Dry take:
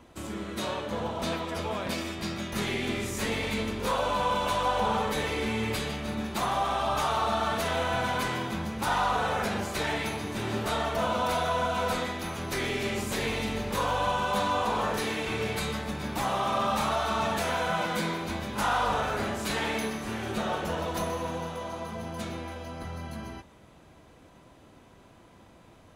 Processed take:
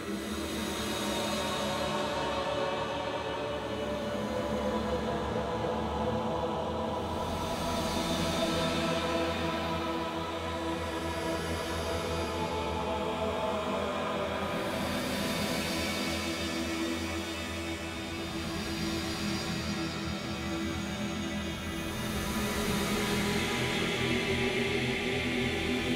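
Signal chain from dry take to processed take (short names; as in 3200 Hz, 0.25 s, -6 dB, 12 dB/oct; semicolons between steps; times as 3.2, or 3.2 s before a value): Paulstretch 11×, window 0.25 s, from 0.51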